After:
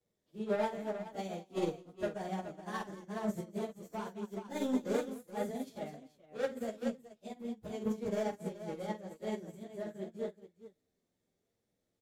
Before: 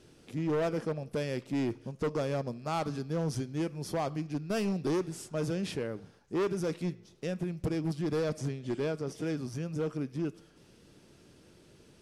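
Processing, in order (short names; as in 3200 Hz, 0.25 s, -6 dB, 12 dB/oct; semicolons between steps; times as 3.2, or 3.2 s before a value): pitch shift by moving bins +5 st; tapped delay 47/215/425 ms -5/-10.5/-5 dB; upward expander 2.5:1, over -43 dBFS; gain +1 dB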